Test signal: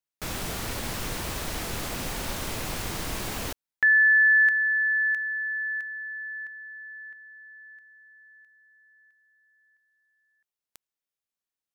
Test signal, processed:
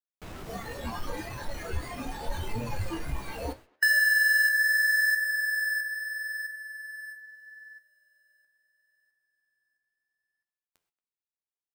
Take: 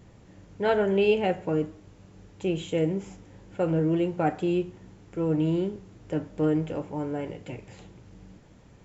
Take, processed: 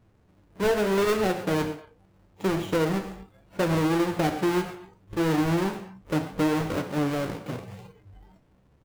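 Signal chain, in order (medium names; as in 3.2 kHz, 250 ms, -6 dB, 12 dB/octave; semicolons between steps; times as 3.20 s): square wave that keeps the level; gated-style reverb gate 150 ms flat, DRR 9.5 dB; flange 0.76 Hz, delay 8.2 ms, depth 8 ms, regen +60%; speakerphone echo 230 ms, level -22 dB; spectral noise reduction 14 dB; treble shelf 2.9 kHz -7.5 dB; compression 6:1, threshold -25 dBFS; trim +4.5 dB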